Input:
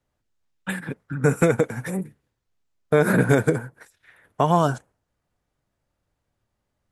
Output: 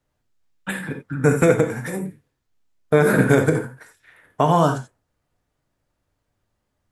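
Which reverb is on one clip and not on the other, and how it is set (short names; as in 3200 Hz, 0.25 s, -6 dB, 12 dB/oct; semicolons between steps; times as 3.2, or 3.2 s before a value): non-linear reverb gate 0.11 s flat, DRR 5 dB; gain +1.5 dB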